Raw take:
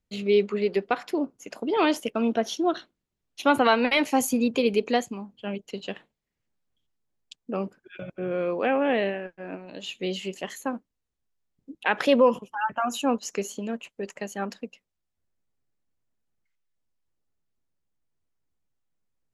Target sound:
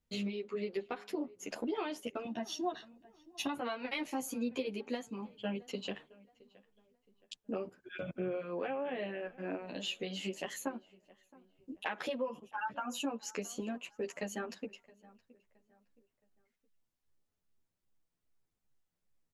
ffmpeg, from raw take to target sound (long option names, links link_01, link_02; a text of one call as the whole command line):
ffmpeg -i in.wav -filter_complex "[0:a]asettb=1/sr,asplit=3[link_01][link_02][link_03];[link_01]atrim=end=2.254[link_04];[link_02]atrim=start=2.25:end=3.55,asetpts=PTS-STARTPTS,afade=type=in:duration=0.004:curve=qsin,afade=type=out:start_time=1.296:duration=0.004:curve=qsin,aecho=1:1:1.1:0.79,atrim=end_sample=57330[link_05];[link_03]atrim=start=3.546[link_06];[link_04][link_05]acrossfade=duration=0.004:curve1=hsin:curve2=qsin[link_07];[link_07][link_06]acrossfade=duration=0.004:curve1=qsin:curve2=hsin,acompressor=threshold=-33dB:ratio=10,asplit=2[link_08][link_09];[link_09]adelay=669,lowpass=frequency=2400:poles=1,volume=-22dB,asplit=2[link_10][link_11];[link_11]adelay=669,lowpass=frequency=2400:poles=1,volume=0.38,asplit=2[link_12][link_13];[link_13]adelay=669,lowpass=frequency=2400:poles=1,volume=0.38[link_14];[link_08][link_10][link_12][link_14]amix=inputs=4:normalize=0,asplit=2[link_15][link_16];[link_16]adelay=10.4,afreqshift=2.5[link_17];[link_15][link_17]amix=inputs=2:normalize=1,volume=2dB" out.wav